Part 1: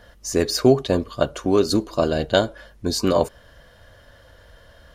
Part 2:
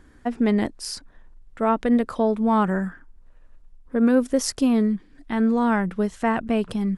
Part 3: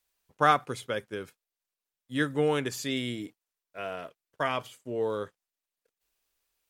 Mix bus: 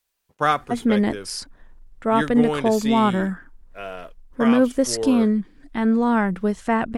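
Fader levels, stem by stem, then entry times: muted, +1.5 dB, +2.5 dB; muted, 0.45 s, 0.00 s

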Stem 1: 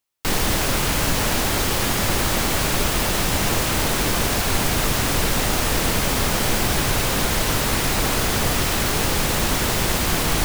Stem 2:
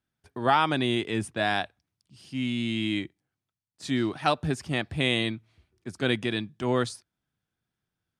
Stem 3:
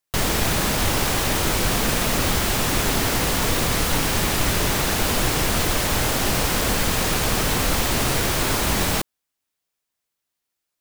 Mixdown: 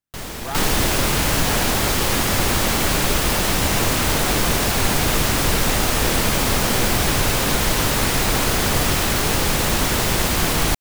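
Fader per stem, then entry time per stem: +1.5, −9.0, −10.0 decibels; 0.30, 0.00, 0.00 seconds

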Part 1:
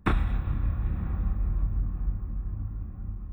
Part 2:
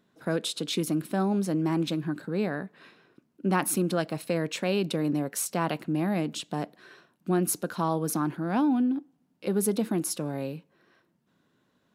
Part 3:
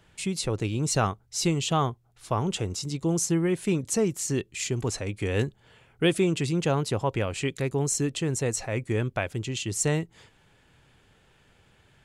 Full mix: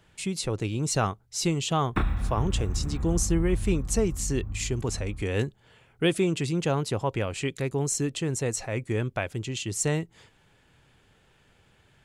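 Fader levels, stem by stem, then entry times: −1.0 dB, muted, −1.0 dB; 1.90 s, muted, 0.00 s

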